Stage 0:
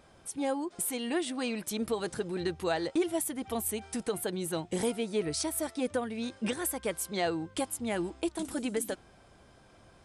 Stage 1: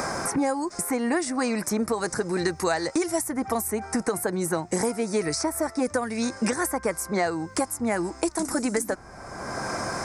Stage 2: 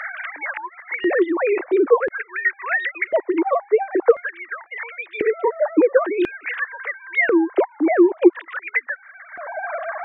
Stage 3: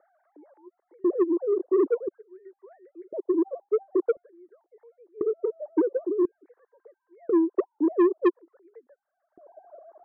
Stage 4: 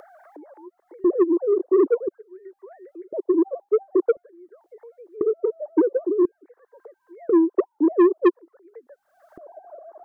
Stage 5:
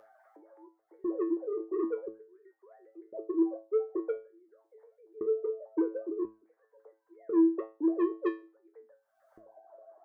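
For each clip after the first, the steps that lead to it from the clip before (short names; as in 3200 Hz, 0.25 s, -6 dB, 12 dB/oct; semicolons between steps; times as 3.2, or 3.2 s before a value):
EQ curve 450 Hz 0 dB, 1100 Hz +6 dB, 2100 Hz +2 dB, 3200 Hz -19 dB, 5300 Hz +6 dB, 10000 Hz 0 dB; three-band squash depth 100%; gain +5 dB
sine-wave speech; LFO high-pass square 0.48 Hz 330–1900 Hz; gain +5.5 dB
ladder low-pass 430 Hz, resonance 55%; soft clip -15 dBFS, distortion -10 dB
upward compressor, threshold -42 dBFS; gain +4.5 dB
resonator 110 Hz, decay 0.31 s, harmonics all, mix 90%; gain -2.5 dB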